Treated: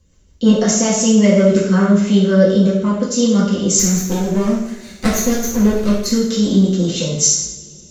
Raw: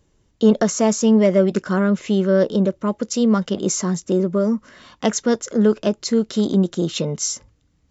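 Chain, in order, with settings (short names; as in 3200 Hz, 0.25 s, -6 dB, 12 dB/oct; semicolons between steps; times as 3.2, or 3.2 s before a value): 3.79–6.06 minimum comb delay 0.48 ms; high shelf 3200 Hz +10.5 dB; rotary speaker horn 5.5 Hz; low shelf 150 Hz +9.5 dB; reverb, pre-delay 3 ms, DRR -7.5 dB; gain -4 dB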